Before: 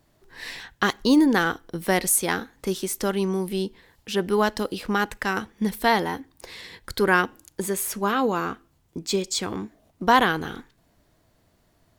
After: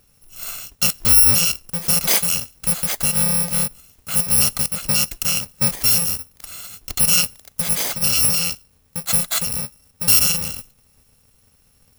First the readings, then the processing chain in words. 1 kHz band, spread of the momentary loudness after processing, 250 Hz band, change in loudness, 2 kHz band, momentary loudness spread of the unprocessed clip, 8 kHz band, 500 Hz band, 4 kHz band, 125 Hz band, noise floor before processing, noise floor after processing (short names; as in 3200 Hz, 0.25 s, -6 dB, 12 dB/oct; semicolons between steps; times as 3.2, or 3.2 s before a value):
-10.0 dB, 17 LU, -7.5 dB, +7.5 dB, -3.0 dB, 17 LU, +13.0 dB, -10.0 dB, +9.5 dB, +5.5 dB, -65 dBFS, -58 dBFS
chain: FFT order left unsorted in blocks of 128 samples; in parallel at +0.5 dB: limiter -14 dBFS, peak gain reduction 9.5 dB